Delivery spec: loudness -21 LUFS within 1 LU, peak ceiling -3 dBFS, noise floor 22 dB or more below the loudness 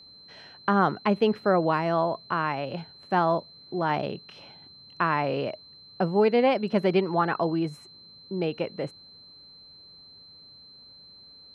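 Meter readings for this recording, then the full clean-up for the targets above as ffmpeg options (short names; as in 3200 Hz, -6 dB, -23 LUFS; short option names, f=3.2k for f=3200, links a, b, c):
steady tone 4100 Hz; tone level -48 dBFS; loudness -26.0 LUFS; peak -9.0 dBFS; loudness target -21.0 LUFS
-> -af "bandreject=f=4.1k:w=30"
-af "volume=5dB"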